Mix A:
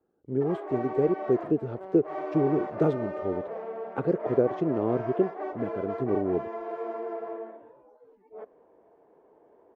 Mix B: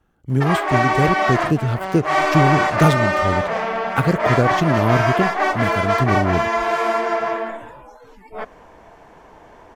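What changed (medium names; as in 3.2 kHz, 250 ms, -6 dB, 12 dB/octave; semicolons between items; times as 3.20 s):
background +7.0 dB; master: remove band-pass filter 420 Hz, Q 2.4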